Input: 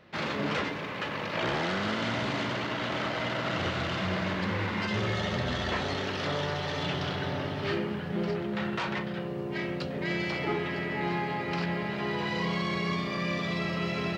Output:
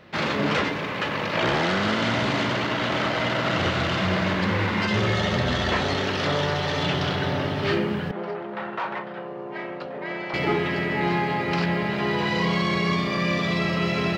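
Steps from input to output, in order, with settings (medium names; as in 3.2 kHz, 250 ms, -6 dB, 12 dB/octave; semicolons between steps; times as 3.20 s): 8.11–10.34 s: band-pass filter 880 Hz, Q 1.1; trim +7 dB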